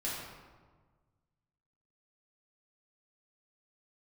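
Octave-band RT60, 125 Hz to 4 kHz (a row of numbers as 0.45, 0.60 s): 2.2, 1.7, 1.5, 1.4, 1.1, 0.80 s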